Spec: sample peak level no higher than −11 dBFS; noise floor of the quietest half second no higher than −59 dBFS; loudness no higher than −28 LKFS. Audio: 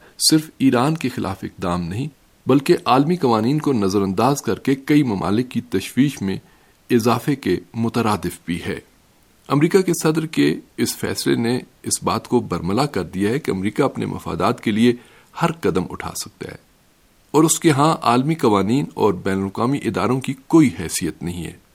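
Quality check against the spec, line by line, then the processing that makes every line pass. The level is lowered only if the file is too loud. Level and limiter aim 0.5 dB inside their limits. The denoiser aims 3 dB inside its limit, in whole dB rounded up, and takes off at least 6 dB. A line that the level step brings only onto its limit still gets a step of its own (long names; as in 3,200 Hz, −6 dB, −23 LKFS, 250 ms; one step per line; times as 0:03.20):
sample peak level −2.5 dBFS: out of spec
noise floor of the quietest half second −56 dBFS: out of spec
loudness −19.5 LKFS: out of spec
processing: level −9 dB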